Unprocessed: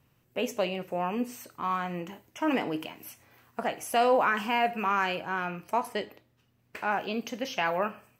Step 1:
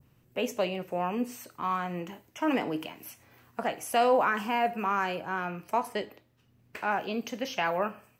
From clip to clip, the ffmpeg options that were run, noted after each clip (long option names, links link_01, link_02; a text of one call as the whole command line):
ffmpeg -i in.wav -filter_complex "[0:a]adynamicequalizer=threshold=0.00891:dfrequency=2900:dqfactor=0.73:tfrequency=2900:tqfactor=0.73:attack=5:release=100:ratio=0.375:range=3:mode=cutabove:tftype=bell,acrossover=split=420|780|4800[link_01][link_02][link_03][link_04];[link_01]acompressor=mode=upward:threshold=-56dB:ratio=2.5[link_05];[link_05][link_02][link_03][link_04]amix=inputs=4:normalize=0" out.wav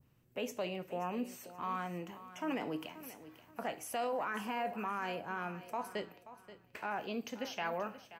ffmpeg -i in.wav -af "alimiter=limit=-22dB:level=0:latency=1:release=24,aecho=1:1:530|1060|1590:0.178|0.0569|0.0182,volume=-6.5dB" out.wav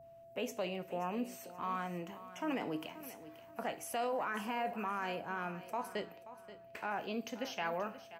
ffmpeg -i in.wav -af "aeval=exprs='val(0)+0.002*sin(2*PI*670*n/s)':channel_layout=same" out.wav